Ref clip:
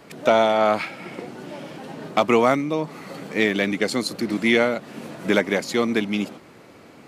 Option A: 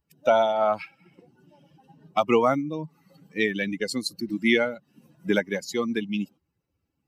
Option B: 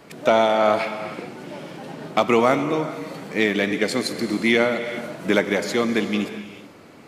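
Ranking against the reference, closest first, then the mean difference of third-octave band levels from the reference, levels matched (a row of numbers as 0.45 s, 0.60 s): B, A; 2.0 dB, 12.0 dB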